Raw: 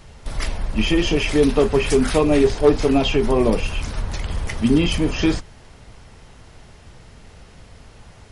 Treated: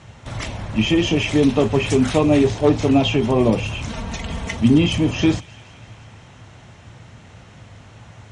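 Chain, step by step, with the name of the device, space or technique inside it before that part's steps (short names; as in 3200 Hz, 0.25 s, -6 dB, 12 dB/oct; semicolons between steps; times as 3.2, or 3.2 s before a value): 3.89–4.57 comb 4.4 ms, depth 82%; car door speaker (speaker cabinet 91–7600 Hz, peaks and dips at 110 Hz +9 dB, 430 Hz -6 dB, 4800 Hz -9 dB); thin delay 0.169 s, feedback 72%, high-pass 1600 Hz, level -21 dB; dynamic EQ 1500 Hz, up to -6 dB, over -41 dBFS, Q 1.3; gain +3 dB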